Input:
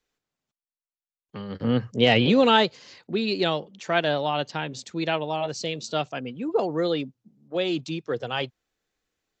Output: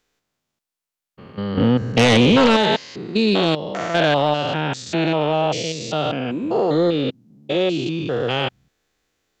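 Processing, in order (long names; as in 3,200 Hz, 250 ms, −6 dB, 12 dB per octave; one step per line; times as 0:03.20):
spectrum averaged block by block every 200 ms
sine wavefolder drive 7 dB, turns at −8.5 dBFS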